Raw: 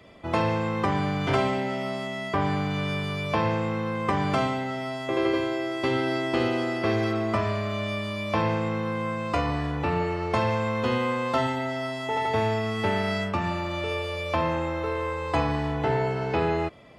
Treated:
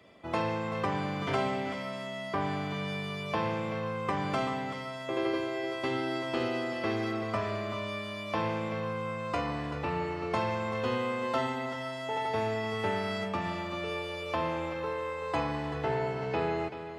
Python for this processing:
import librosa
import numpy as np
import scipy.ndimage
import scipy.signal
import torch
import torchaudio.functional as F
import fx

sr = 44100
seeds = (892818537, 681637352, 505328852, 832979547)

p1 = fx.highpass(x, sr, hz=140.0, slope=6)
p2 = p1 + fx.echo_single(p1, sr, ms=384, db=-10.5, dry=0)
y = F.gain(torch.from_numpy(p2), -5.5).numpy()